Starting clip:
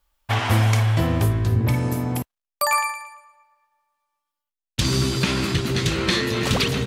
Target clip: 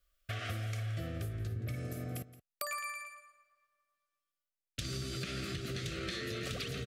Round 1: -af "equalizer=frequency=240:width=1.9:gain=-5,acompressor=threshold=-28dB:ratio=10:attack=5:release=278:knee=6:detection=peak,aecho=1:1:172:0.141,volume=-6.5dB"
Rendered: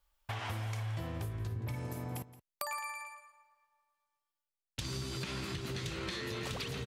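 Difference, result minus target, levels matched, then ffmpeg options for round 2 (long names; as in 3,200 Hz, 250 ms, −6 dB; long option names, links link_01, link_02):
1,000 Hz band +3.0 dB
-af "asuperstop=centerf=920:order=12:qfactor=2.3,equalizer=frequency=240:width=1.9:gain=-5,acompressor=threshold=-28dB:ratio=10:attack=5:release=278:knee=6:detection=peak,aecho=1:1:172:0.141,volume=-6.5dB"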